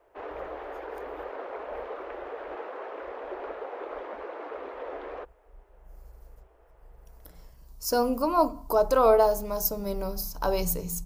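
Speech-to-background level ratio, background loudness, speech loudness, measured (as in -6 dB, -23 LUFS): 13.0 dB, -38.5 LUFS, -25.5 LUFS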